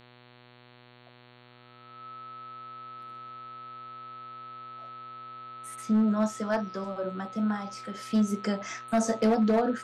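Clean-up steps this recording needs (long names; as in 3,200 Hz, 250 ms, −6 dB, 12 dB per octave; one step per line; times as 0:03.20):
clipped peaks rebuilt −18.5 dBFS
hum removal 122.4 Hz, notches 36
notch filter 1,300 Hz, Q 30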